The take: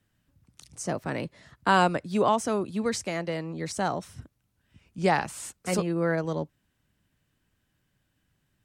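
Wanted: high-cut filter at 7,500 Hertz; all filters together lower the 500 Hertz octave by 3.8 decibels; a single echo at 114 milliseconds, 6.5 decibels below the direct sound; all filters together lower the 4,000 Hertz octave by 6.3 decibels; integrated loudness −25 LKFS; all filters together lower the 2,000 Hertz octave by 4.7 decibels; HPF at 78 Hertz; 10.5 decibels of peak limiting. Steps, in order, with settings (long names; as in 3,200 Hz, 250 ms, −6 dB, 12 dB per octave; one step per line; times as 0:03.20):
high-pass filter 78 Hz
low-pass filter 7,500 Hz
parametric band 500 Hz −4.5 dB
parametric band 2,000 Hz −5 dB
parametric band 4,000 Hz −6.5 dB
brickwall limiter −22 dBFS
single-tap delay 114 ms −6.5 dB
level +8.5 dB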